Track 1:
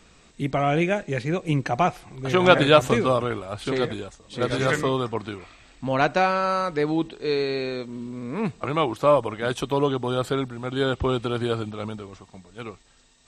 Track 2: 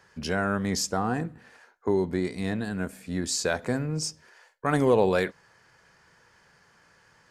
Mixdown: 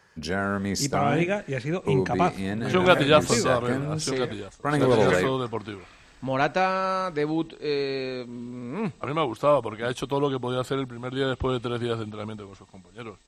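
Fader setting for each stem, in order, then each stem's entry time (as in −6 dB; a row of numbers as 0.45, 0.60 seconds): −2.5, 0.0 decibels; 0.40, 0.00 seconds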